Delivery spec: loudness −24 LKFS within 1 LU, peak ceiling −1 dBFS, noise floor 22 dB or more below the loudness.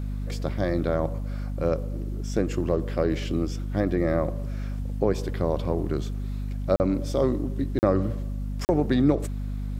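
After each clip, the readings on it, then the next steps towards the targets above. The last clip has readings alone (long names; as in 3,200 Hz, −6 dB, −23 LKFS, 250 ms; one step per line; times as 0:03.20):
number of dropouts 3; longest dropout 39 ms; mains hum 50 Hz; hum harmonics up to 250 Hz; level of the hum −28 dBFS; integrated loudness −27.0 LKFS; sample peak −8.5 dBFS; target loudness −24.0 LKFS
→ repair the gap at 0:06.76/0:07.79/0:08.65, 39 ms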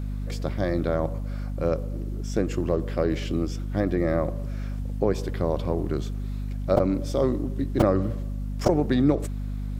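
number of dropouts 0; mains hum 50 Hz; hum harmonics up to 250 Hz; level of the hum −28 dBFS
→ mains-hum notches 50/100/150/200/250 Hz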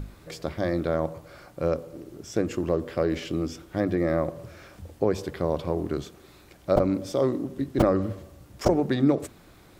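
mains hum none found; integrated loudness −27.0 LKFS; sample peak −5.5 dBFS; target loudness −24.0 LKFS
→ level +3 dB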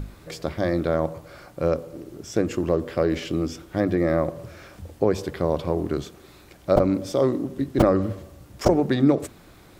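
integrated loudness −24.0 LKFS; sample peak −2.5 dBFS; background noise floor −50 dBFS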